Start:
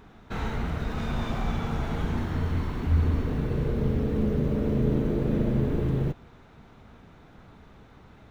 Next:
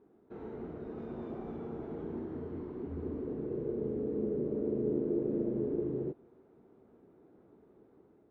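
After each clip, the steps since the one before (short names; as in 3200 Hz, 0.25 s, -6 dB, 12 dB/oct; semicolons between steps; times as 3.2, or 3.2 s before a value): AGC gain up to 3.5 dB; band-pass 370 Hz, Q 3.1; gain -3 dB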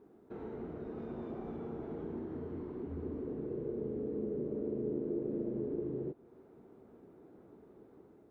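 compressor 1.5:1, threshold -50 dBFS, peak gain reduction 8.5 dB; gain +3.5 dB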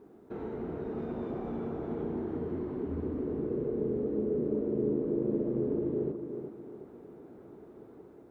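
tape echo 0.366 s, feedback 44%, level -6 dB; gain +5.5 dB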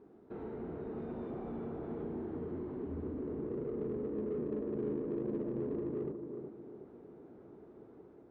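in parallel at -3.5 dB: soft clip -35.5 dBFS, distortion -8 dB; on the sum: air absorption 120 m; gain -8 dB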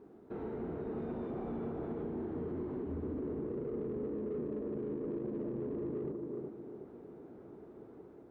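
limiter -34 dBFS, peak gain reduction 8 dB; gain +2.5 dB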